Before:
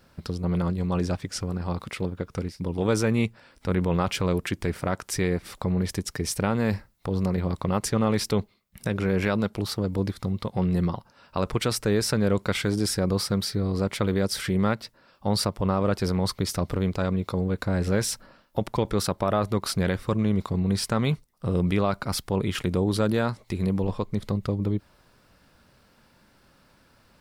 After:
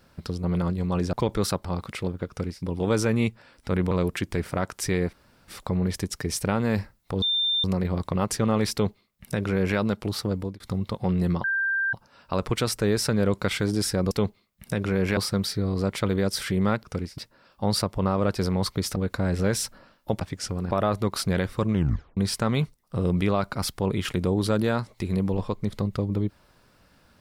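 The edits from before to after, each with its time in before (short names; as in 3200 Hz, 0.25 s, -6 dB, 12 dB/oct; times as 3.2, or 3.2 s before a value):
1.13–1.63 swap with 18.69–19.21
2.26–2.61 copy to 14.81
3.89–4.21 cut
5.43 insert room tone 0.35 s
7.17 add tone 3590 Hz -21 dBFS 0.42 s
8.25–9.31 copy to 13.15
9.88–10.13 fade out
10.97 add tone 1580 Hz -22 dBFS 0.49 s
16.59–17.44 cut
20.23 tape stop 0.44 s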